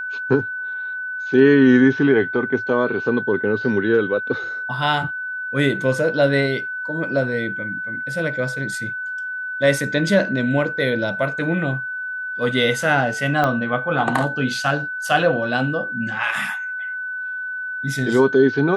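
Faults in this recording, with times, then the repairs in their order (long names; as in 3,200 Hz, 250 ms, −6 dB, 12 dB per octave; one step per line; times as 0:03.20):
whistle 1,500 Hz −25 dBFS
0:13.44: click −8 dBFS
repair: click removal
notch filter 1,500 Hz, Q 30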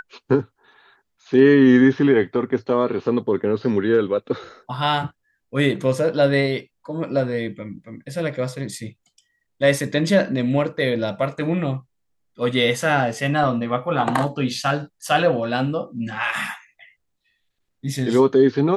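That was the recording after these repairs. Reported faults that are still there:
0:13.44: click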